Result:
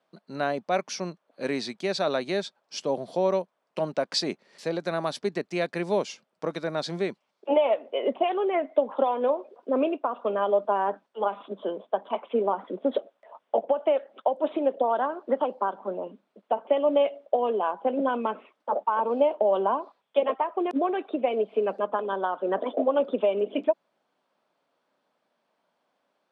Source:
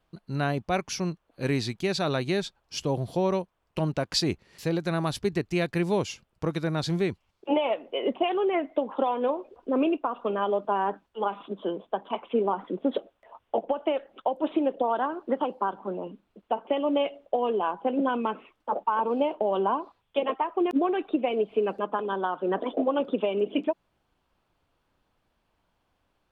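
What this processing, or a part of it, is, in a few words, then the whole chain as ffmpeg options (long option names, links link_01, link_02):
television speaker: -af "highpass=frequency=210:width=0.5412,highpass=frequency=210:width=1.3066,equalizer=frequency=320:width_type=q:width=4:gain=-5,equalizer=frequency=600:width_type=q:width=4:gain=6,equalizer=frequency=2800:width_type=q:width=4:gain=-4,equalizer=frequency=7000:width_type=q:width=4:gain=-4,lowpass=frequency=9000:width=0.5412,lowpass=frequency=9000:width=1.3066"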